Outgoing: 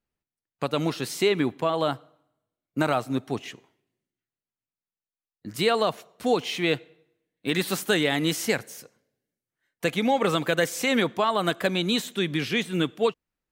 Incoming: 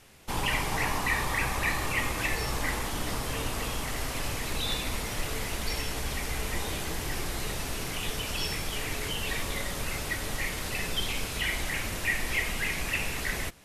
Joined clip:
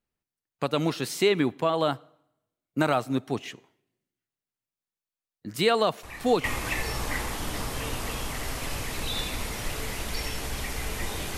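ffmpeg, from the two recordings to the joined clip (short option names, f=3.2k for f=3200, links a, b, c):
-filter_complex "[1:a]asplit=2[a][b];[0:a]apad=whole_dur=11.37,atrim=end=11.37,atrim=end=6.442[c];[b]atrim=start=1.968:end=6.9[d];[a]atrim=start=1.56:end=1.97,asetpts=PTS-STARTPTS,volume=-13.5dB,afade=t=in:d=0.004:c=hsin,afade=t=out:st=0.406:d=0.004:c=hsin,adelay=6030[e];[c][d]acrossfade=d=0.004:c1=hsin:c2=hsin[f];[f][e]amix=inputs=2:normalize=0"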